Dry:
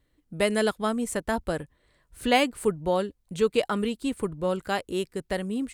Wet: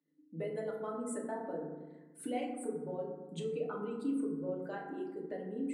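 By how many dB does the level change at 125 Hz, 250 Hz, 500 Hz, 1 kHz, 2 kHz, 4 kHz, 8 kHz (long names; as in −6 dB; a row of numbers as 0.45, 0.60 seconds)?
−11.0, −9.5, −11.5, −14.5, −19.5, −23.5, −13.0 decibels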